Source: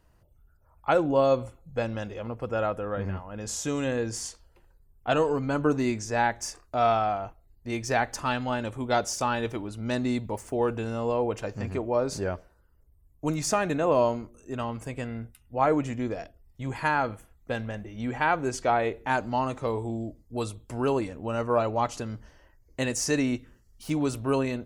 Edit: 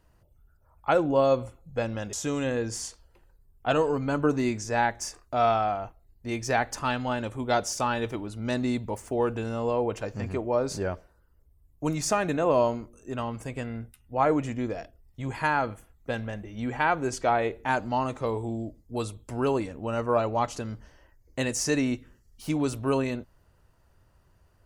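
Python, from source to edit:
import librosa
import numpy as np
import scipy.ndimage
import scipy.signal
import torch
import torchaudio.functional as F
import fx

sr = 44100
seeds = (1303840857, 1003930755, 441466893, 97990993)

y = fx.edit(x, sr, fx.cut(start_s=2.13, length_s=1.41), tone=tone)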